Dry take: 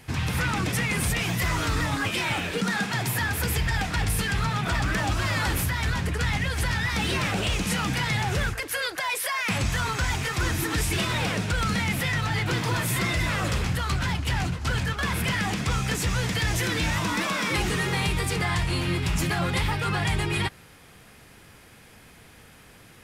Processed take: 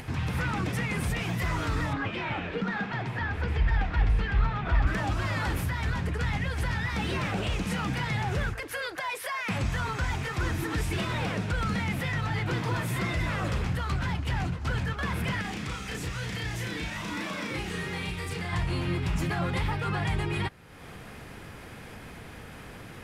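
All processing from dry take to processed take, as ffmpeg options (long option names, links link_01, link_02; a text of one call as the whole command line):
ffmpeg -i in.wav -filter_complex "[0:a]asettb=1/sr,asplit=3[link_01][link_02][link_03];[link_01]atrim=end=1.934[link_04];[link_02]atrim=start=1.93:end=4.87,asetpts=PTS-STARTPTS,afade=type=in:duration=0.004:curve=qsin,afade=type=out:start_time=2.936:duration=0.004:curve=qsin,lowpass=3200,asubboost=boost=8.5:cutoff=54[link_05];[link_03]atrim=start=4.866[link_06];[link_04][link_05]acrossfade=duration=0.004:curve1=hsin:curve2=qsin[link_07];[link_07][link_06]acrossfade=duration=0.004:curve1=qsin:curve2=hsin,asettb=1/sr,asplit=3[link_08][link_09][link_10];[link_08]atrim=end=15.414[link_11];[link_09]atrim=start=15.41:end=18.53,asetpts=PTS-STARTPTS,afade=type=in:duration=0.004:curve=qsin,afade=type=out:start_time=3.116:duration=0.004:curve=qsin,acrossover=split=760|1600[link_12][link_13][link_14];[link_12]acompressor=threshold=-33dB:ratio=4[link_15];[link_13]acompressor=threshold=-47dB:ratio=4[link_16];[link_14]acompressor=threshold=-31dB:ratio=4[link_17];[link_15][link_16][link_17]amix=inputs=3:normalize=0,asplit=2[link_18][link_19];[link_19]adelay=34,volume=-2dB[link_20];[link_18][link_20]amix=inputs=2:normalize=0,atrim=end_sample=137592[link_21];[link_10]atrim=start=18.526[link_22];[link_11][link_21]acrossfade=duration=0.004:curve1=hsin:curve2=qsin[link_23];[link_23][link_22]acrossfade=duration=0.004:curve1=qsin:curve2=hsin,highshelf=frequency=3200:gain=-10.5,acompressor=mode=upward:threshold=-30dB:ratio=2.5,volume=-2.5dB" out.wav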